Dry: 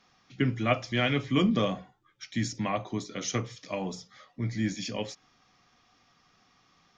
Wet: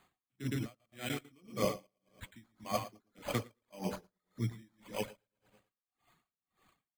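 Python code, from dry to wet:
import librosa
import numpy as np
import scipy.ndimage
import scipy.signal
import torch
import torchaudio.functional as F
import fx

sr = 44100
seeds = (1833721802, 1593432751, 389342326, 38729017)

y = fx.reverse_delay_fb(x, sr, ms=110, feedback_pct=57, wet_db=-5.0)
y = fx.high_shelf(y, sr, hz=6500.0, db=12.0, at=(3.58, 3.98))
y = np.repeat(y[::8], 8)[:len(y)]
y = fx.dereverb_blind(y, sr, rt60_s=1.3)
y = y + 10.0 ** (-8.5 / 20.0) * np.pad(y, (int(114 * sr / 1000.0), 0))[:len(y)]
y = fx.level_steps(y, sr, step_db=16, at=(0.65, 1.24), fade=0.02)
y = y * 10.0 ** (-38 * (0.5 - 0.5 * np.cos(2.0 * np.pi * 1.8 * np.arange(len(y)) / sr)) / 20.0)
y = F.gain(torch.from_numpy(y), -2.5).numpy()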